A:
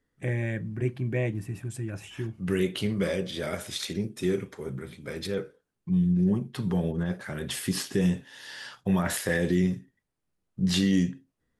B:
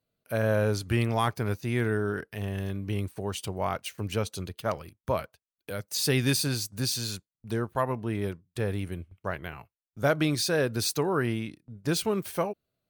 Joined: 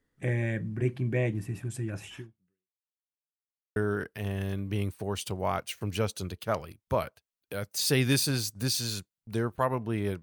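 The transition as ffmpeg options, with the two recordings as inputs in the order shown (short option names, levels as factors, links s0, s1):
-filter_complex "[0:a]apad=whole_dur=10.22,atrim=end=10.22,asplit=2[s0][s1];[s0]atrim=end=2.82,asetpts=PTS-STARTPTS,afade=t=out:st=2.15:d=0.67:c=exp[s2];[s1]atrim=start=2.82:end=3.76,asetpts=PTS-STARTPTS,volume=0[s3];[1:a]atrim=start=1.93:end=8.39,asetpts=PTS-STARTPTS,afade=t=in:d=0.004:c=hsin[s4];[s2][s3][s4]concat=n=3:v=0:a=1"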